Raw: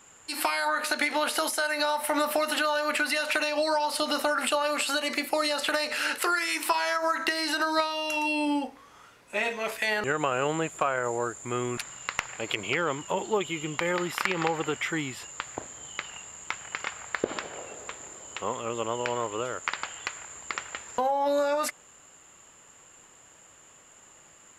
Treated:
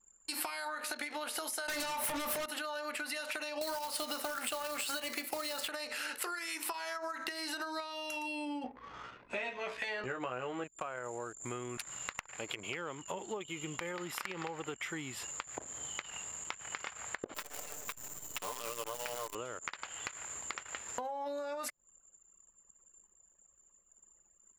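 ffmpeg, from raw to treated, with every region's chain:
-filter_complex "[0:a]asettb=1/sr,asplit=3[a][b][c];[a]atrim=end=1.684[d];[b]atrim=start=1.68:end=2.46,asetpts=PTS-STARTPTS,afade=t=in:d=0.004:c=qsin,afade=t=out:st=0.776:d=0.004:c=qsin,acompressor=threshold=-28dB:ratio=6:attack=3.2:release=140:knee=1:detection=peak,aeval=exprs='0.119*sin(PI/2*3.98*val(0)/0.119)':c=same,asplit=2[e][f];[f]adelay=21,volume=-11dB[g];[e][g]amix=inputs=2:normalize=0,atrim=end_sample=34398[h];[c]atrim=start=2.456[i];[d][h]acrossfade=d=0.004:c1=hsin:c2=qsin[j];[j][i]acrossfade=d=0.004:c1=qsin:c2=hsin,asettb=1/sr,asplit=3[k][l][m];[k]atrim=end=3.614[n];[l]atrim=start=3.61:end=5.68,asetpts=PTS-STARTPTS,afade=t=in:d=0.004:c=qsin,afade=t=out:st=2.066:d=0.004:c=qsin,lowshelf=f=200:g=-5.5,acontrast=84,acrusher=bits=2:mode=log:mix=0:aa=0.000001[o];[m]atrim=start=5.676[p];[n][o]acrossfade=d=0.004:c1=hsin:c2=qsin[q];[q][p]acrossfade=d=0.004:c1=qsin:c2=hsin,asettb=1/sr,asplit=3[r][s][t];[r]atrim=end=8.644[u];[s]atrim=start=8.64:end=10.64,asetpts=PTS-STARTPTS,afade=t=in:d=0.004:c=qsin,afade=t=out:st=1.996:d=0.004:c=qsin,lowpass=4.5k,acontrast=35,asplit=2[v][w];[w]adelay=16,volume=-4dB[x];[v][x]amix=inputs=2:normalize=0,atrim=end_sample=88200[y];[t]atrim=start=10.636[z];[u][y]acrossfade=d=0.004:c1=hsin:c2=qsin[aa];[aa][z]acrossfade=d=0.004:c1=qsin:c2=hsin,asettb=1/sr,asplit=3[ab][ac][ad];[ab]atrim=end=17.344[ae];[ac]atrim=start=17.34:end=19.35,asetpts=PTS-STARTPTS,afade=t=in:d=0.004:c=qsin,afade=t=out:st=2.006:d=0.004:c=qsin,highpass=f=640:p=1,aecho=1:1:6.8:0.9,atrim=end_sample=88641,acrusher=bits=6:dc=4:mix=0:aa=0.000001[af];[ad]atrim=start=19.346[ag];[ae][af]acrossfade=d=0.004:c1=hsin:c2=qsin[ah];[ah][ag]acrossfade=d=0.004:c1=qsin:c2=hsin,acompressor=threshold=-36dB:ratio=5,anlmdn=0.01,highshelf=f=8.1k:g=7,volume=-2dB"

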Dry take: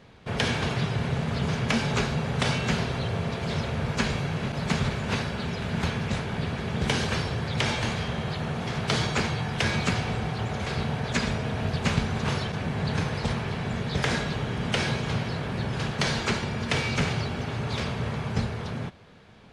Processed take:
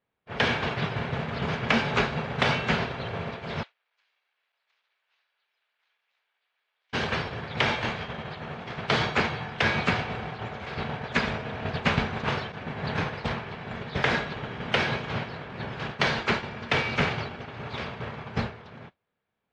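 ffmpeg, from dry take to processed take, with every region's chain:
-filter_complex "[0:a]asettb=1/sr,asplit=3[a][b][c];[a]atrim=end=3.634[d];[b]atrim=start=3.63:end=6.93,asetpts=PTS-STARTPTS,afade=t=in:d=0.004:c=qsin,afade=t=out:st=3.296:d=0.004:c=qsin,asoftclip=type=hard:threshold=-26dB,highpass=510,lowpass=4.3k,aderivative[e];[c]atrim=start=6.926[f];[d][e]acrossfade=d=0.004:c1=hsin:c2=qsin[g];[g][f]acrossfade=d=0.004:c1=qsin:c2=hsin,agate=range=-33dB:threshold=-22dB:ratio=3:detection=peak,lowpass=3.1k,lowshelf=f=300:g=-10,volume=7dB"

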